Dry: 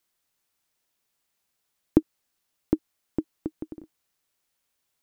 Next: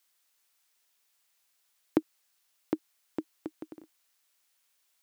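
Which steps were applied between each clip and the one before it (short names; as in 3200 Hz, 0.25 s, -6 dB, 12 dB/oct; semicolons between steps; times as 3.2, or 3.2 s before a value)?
HPF 1200 Hz 6 dB/oct; gain +5 dB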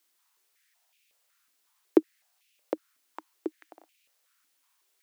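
stepped high-pass 5.4 Hz 280–2500 Hz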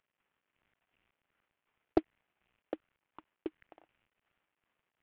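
CVSD 16 kbps; Doppler distortion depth 0.39 ms; gain -5.5 dB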